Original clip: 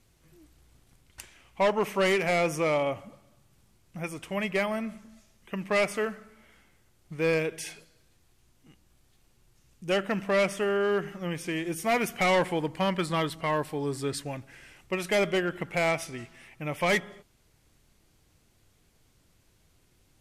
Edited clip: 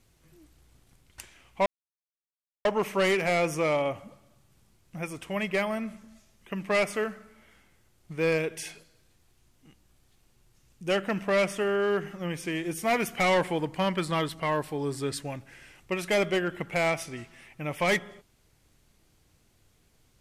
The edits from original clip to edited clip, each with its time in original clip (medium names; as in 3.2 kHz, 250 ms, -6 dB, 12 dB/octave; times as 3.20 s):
1.66 s: insert silence 0.99 s